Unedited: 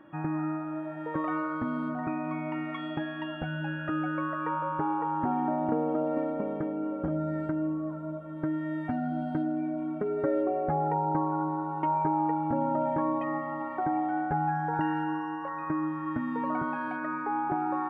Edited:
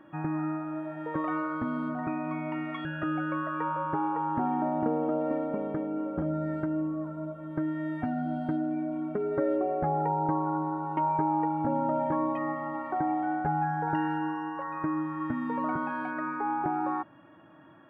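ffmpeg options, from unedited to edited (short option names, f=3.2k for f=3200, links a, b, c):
-filter_complex "[0:a]asplit=2[a][b];[a]atrim=end=2.852[c];[b]atrim=start=3.708[d];[c][d]acrossfade=d=0.004:c1=hsin:c2=hsin"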